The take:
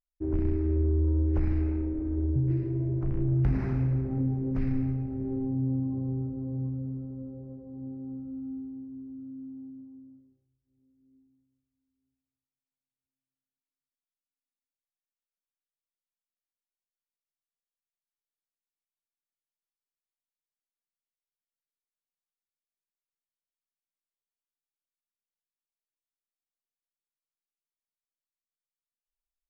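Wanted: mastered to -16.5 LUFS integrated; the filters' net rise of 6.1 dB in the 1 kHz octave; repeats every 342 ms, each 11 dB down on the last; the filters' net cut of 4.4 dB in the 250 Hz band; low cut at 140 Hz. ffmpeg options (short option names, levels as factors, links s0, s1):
-af "highpass=140,equalizer=f=250:t=o:g=-5.5,equalizer=f=1000:t=o:g=8.5,aecho=1:1:342|684|1026:0.282|0.0789|0.0221,volume=8.91"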